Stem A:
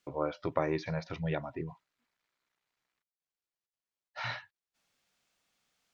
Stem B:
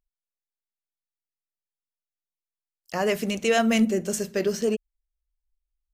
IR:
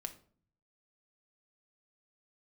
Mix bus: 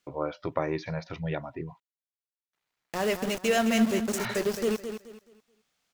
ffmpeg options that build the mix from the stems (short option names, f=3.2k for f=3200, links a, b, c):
-filter_complex "[0:a]volume=1.5dB,asplit=3[a][b][c];[a]atrim=end=1.8,asetpts=PTS-STARTPTS,afade=t=out:st=1.796:d=0.004:c=hsin[d];[b]atrim=start=1.8:end=2.53,asetpts=PTS-STARTPTS,volume=0[e];[c]atrim=start=2.53,asetpts=PTS-STARTPTS,afade=t=in:d=0.004:c=hsin[f];[d][e][f]concat=n=3:v=0:a=1[g];[1:a]lowshelf=f=94:g=4.5,aeval=exprs='val(0)*gte(abs(val(0)),0.0422)':c=same,volume=-3.5dB,asplit=2[h][i];[i]volume=-9dB,aecho=0:1:214|428|642|856:1|0.28|0.0784|0.022[j];[g][h][j]amix=inputs=3:normalize=0"